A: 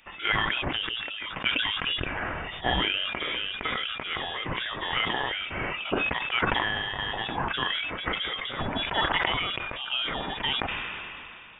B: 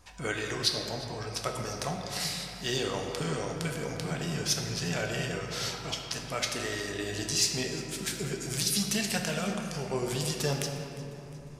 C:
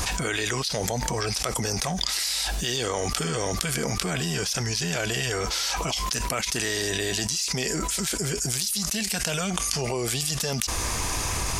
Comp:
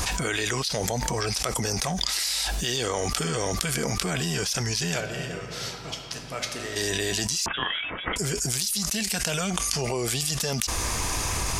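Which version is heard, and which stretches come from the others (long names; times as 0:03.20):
C
0:05.00–0:06.76: punch in from B
0:07.46–0:08.16: punch in from A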